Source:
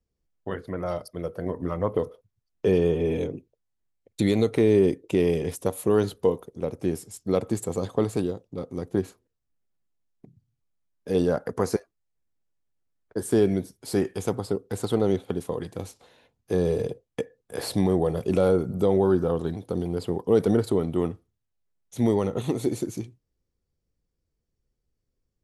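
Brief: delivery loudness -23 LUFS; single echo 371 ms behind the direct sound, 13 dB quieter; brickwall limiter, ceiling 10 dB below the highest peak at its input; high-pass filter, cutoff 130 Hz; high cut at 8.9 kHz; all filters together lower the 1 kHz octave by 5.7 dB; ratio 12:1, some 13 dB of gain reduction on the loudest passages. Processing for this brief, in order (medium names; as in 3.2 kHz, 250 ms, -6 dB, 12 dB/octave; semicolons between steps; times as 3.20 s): high-pass 130 Hz; low-pass 8.9 kHz; peaking EQ 1 kHz -8 dB; compression 12:1, threshold -30 dBFS; peak limiter -29 dBFS; delay 371 ms -13 dB; trim +17.5 dB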